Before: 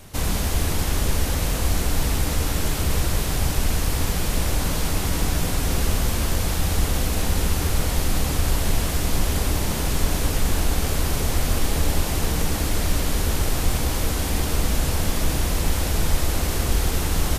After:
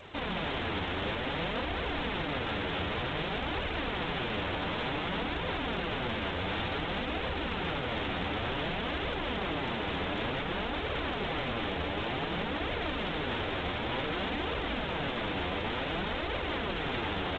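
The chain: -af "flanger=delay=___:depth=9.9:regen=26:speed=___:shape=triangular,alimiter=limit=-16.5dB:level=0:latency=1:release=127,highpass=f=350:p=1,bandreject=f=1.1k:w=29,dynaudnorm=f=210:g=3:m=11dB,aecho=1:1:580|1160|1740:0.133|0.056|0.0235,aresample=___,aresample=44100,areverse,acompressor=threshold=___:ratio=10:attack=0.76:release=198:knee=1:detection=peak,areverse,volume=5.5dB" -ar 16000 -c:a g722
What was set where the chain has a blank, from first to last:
1.6, 0.55, 8000, -33dB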